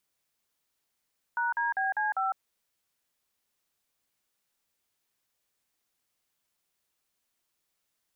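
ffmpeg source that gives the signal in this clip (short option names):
-f lavfi -i "aevalsrc='0.0376*clip(min(mod(t,0.199),0.155-mod(t,0.199))/0.002,0,1)*(eq(floor(t/0.199),0)*(sin(2*PI*941*mod(t,0.199))+sin(2*PI*1477*mod(t,0.199)))+eq(floor(t/0.199),1)*(sin(2*PI*941*mod(t,0.199))+sin(2*PI*1633*mod(t,0.199)))+eq(floor(t/0.199),2)*(sin(2*PI*770*mod(t,0.199))+sin(2*PI*1633*mod(t,0.199)))+eq(floor(t/0.199),3)*(sin(2*PI*852*mod(t,0.199))+sin(2*PI*1633*mod(t,0.199)))+eq(floor(t/0.199),4)*(sin(2*PI*770*mod(t,0.199))+sin(2*PI*1336*mod(t,0.199))))':d=0.995:s=44100"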